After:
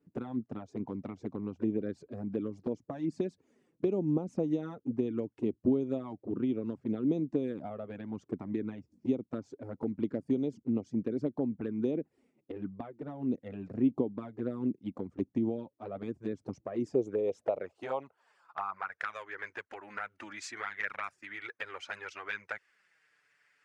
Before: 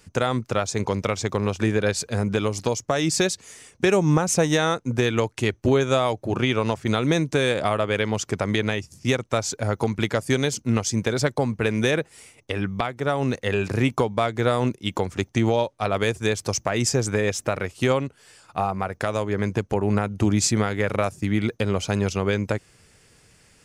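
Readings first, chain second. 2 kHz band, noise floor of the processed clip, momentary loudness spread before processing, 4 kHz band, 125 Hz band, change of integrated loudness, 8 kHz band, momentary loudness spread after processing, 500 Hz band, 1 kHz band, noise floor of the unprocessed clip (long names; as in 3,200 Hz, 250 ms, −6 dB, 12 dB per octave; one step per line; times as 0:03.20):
−14.5 dB, −77 dBFS, 6 LU, below −20 dB, −18.0 dB, −12.0 dB, below −25 dB, 11 LU, −12.5 dB, −16.0 dB, −57 dBFS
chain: harmonic and percussive parts rebalanced harmonic −5 dB
band-pass filter sweep 270 Hz → 1,700 Hz, 0:16.58–0:19.01
flanger swept by the level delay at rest 7.1 ms, full sweep at −26 dBFS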